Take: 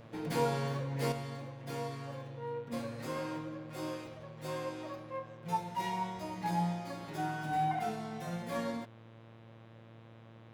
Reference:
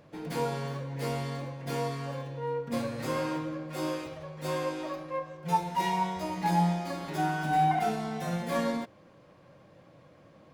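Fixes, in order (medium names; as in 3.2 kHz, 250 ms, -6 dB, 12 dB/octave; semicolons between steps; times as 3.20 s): de-hum 113.4 Hz, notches 35; gain correction +7 dB, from 1.12 s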